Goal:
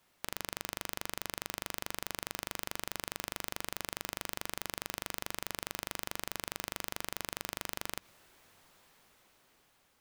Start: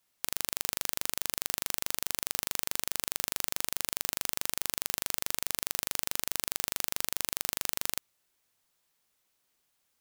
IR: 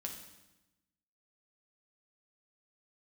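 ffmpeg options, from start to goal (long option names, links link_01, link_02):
-filter_complex "[0:a]highshelf=frequency=3600:gain=-11.5,dynaudnorm=framelen=730:gausssize=5:maxgain=11.5dB,alimiter=limit=-22.5dB:level=0:latency=1:release=94,asplit=2[link_01][link_02];[1:a]atrim=start_sample=2205,lowpass=5100[link_03];[link_02][link_03]afir=irnorm=-1:irlink=0,volume=-18dB[link_04];[link_01][link_04]amix=inputs=2:normalize=0,volume=11.5dB"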